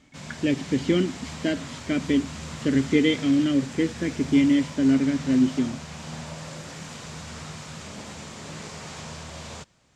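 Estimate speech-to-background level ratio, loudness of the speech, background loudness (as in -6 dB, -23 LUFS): 13.5 dB, -24.0 LUFS, -37.5 LUFS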